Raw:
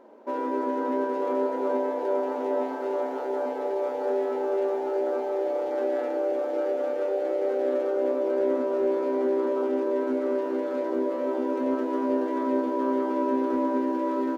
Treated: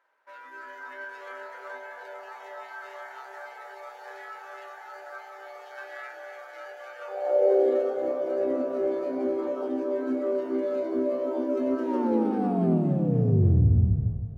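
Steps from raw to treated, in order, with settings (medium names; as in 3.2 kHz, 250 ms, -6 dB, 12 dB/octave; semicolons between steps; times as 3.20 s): tape stop on the ending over 2.56 s; spectral noise reduction 10 dB; high-pass sweep 1.6 kHz -> 86 Hz, 6.97–8.15 s; two-band feedback delay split 530 Hz, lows 166 ms, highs 279 ms, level -9 dB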